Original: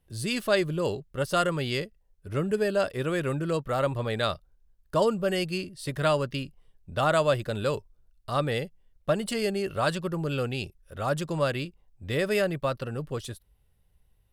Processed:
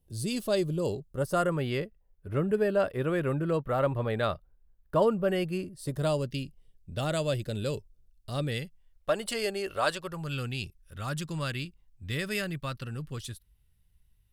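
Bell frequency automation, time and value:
bell -13.5 dB 1.8 oct
0.92 s 1700 Hz
1.71 s 6100 Hz
5.39 s 6100 Hz
6.33 s 1100 Hz
8.42 s 1100 Hz
9.13 s 140 Hz
9.91 s 140 Hz
10.4 s 590 Hz

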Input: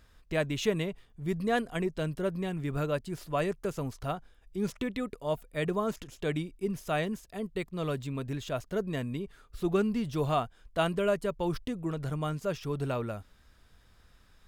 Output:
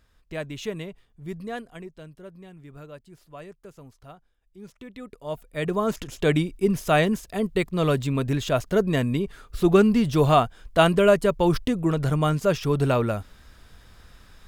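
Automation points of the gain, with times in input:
1.33 s -3 dB
2.1 s -12 dB
4.72 s -12 dB
5.17 s -2.5 dB
6.15 s +10.5 dB

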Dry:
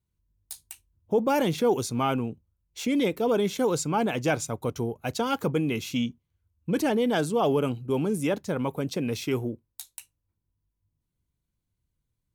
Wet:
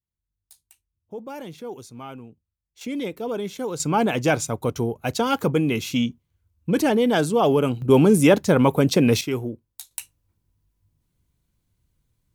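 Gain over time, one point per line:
-12 dB
from 2.81 s -4 dB
from 3.8 s +5 dB
from 7.82 s +11.5 dB
from 9.21 s +1.5 dB
from 9.91 s +9.5 dB

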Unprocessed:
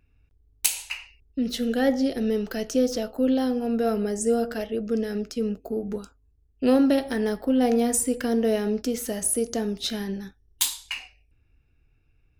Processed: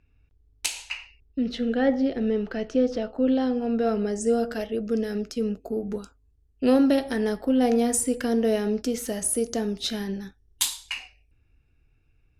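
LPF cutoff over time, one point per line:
0.97 s 6400 Hz
1.69 s 2800 Hz
2.86 s 2800 Hz
3.98 s 5400 Hz
4.66 s 12000 Hz

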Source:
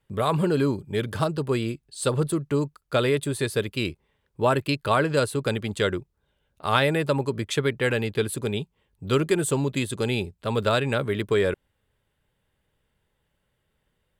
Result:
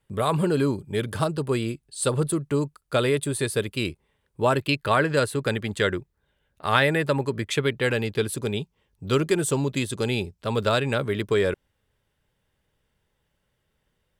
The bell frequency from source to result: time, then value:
bell +6 dB 0.43 oct
4.41 s 9300 Hz
4.82 s 1800 Hz
7.44 s 1800 Hz
7.97 s 5600 Hz

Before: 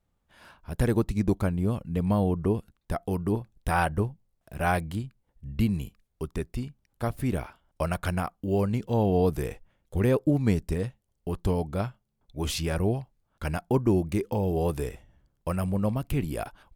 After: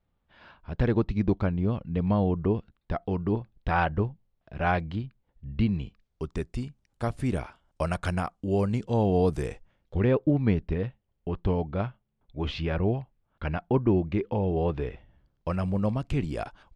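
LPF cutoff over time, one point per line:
LPF 24 dB/oct
5.78 s 4200 Hz
6.48 s 8900 Hz
9.49 s 8900 Hz
10.12 s 3500 Hz
14.88 s 3500 Hz
15.8 s 7100 Hz

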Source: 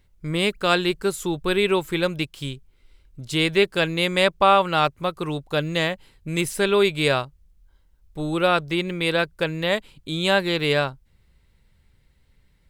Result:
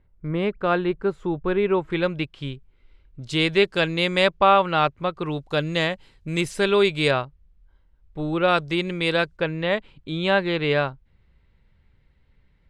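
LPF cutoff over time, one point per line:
1500 Hz
from 1.9 s 2900 Hz
from 3.22 s 6100 Hz
from 4.29 s 3400 Hz
from 5.38 s 6700 Hz
from 7.11 s 2800 Hz
from 8.48 s 7200 Hz
from 9.37 s 2900 Hz

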